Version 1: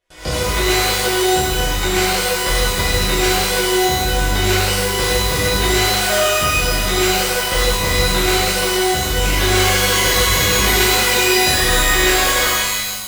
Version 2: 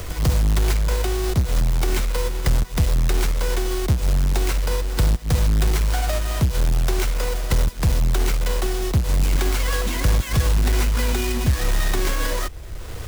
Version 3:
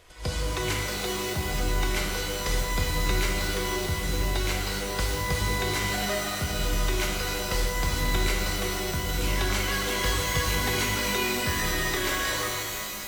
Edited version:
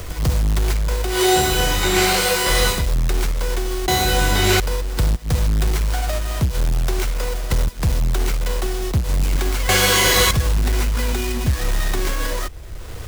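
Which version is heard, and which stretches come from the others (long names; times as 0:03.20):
2
0:01.14–0:02.78: punch in from 1, crossfade 0.16 s
0:03.88–0:04.60: punch in from 1
0:09.69–0:10.31: punch in from 1
not used: 3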